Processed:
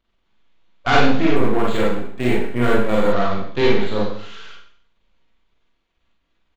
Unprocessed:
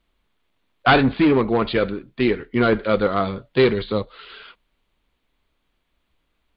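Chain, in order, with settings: half-wave gain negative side -12 dB; Schroeder reverb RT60 0.58 s, combs from 33 ms, DRR -5 dB; downsampling 16000 Hz; in parallel at -10.5 dB: soft clip -11.5 dBFS, distortion -10 dB; 1.36–3.13 on the sum: decimation joined by straight lines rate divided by 4×; gain -4 dB

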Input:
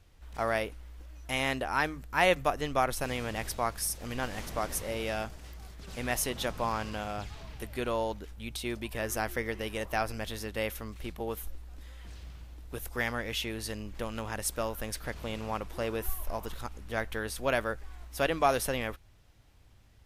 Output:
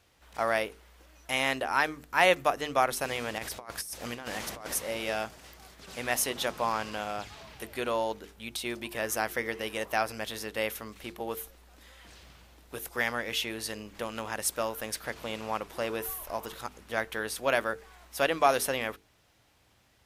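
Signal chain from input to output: 3.38–4.74 negative-ratio compressor -37 dBFS, ratio -0.5; HPF 310 Hz 6 dB/oct; notches 50/100/150/200/250/300/350/400/450 Hz; gain +3 dB

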